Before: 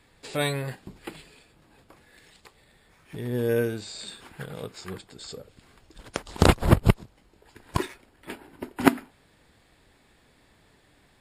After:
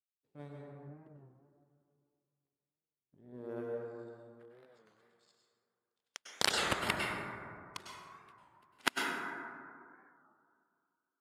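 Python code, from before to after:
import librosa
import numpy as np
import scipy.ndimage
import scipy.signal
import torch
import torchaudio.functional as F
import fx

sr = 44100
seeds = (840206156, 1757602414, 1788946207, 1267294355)

y = fx.bass_treble(x, sr, bass_db=4, treble_db=5)
y = fx.power_curve(y, sr, exponent=2.0)
y = fx.filter_sweep_bandpass(y, sr, from_hz=210.0, to_hz=3400.0, start_s=2.93, end_s=5.14, q=0.81)
y = fx.rev_plate(y, sr, seeds[0], rt60_s=2.4, hf_ratio=0.3, predelay_ms=90, drr_db=-2.0)
y = fx.record_warp(y, sr, rpm=33.33, depth_cents=160.0)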